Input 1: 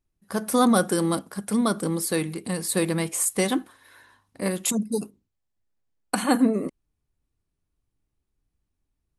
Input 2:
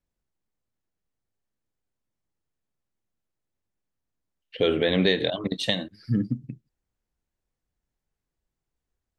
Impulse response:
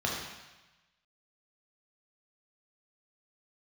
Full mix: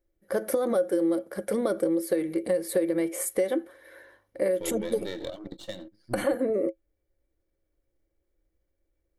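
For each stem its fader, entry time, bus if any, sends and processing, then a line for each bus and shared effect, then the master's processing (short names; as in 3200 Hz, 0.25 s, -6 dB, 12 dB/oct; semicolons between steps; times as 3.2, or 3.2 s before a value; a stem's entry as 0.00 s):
+2.5 dB, 0.00 s, no send, graphic EQ 125/250/500/1000/2000/4000/8000 Hz -10/-10/+9/-10/+5/-7/-11 dB; limiter -17 dBFS, peak gain reduction 8.5 dB
-3.5 dB, 0.00 s, no send, half-wave gain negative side -12 dB; auto duck -9 dB, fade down 0.90 s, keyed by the first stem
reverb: off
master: bell 2500 Hz -13.5 dB 0.21 oct; small resonant body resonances 330/540/2300 Hz, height 14 dB, ringing for 80 ms; compressor 5:1, threshold -23 dBFS, peak gain reduction 14 dB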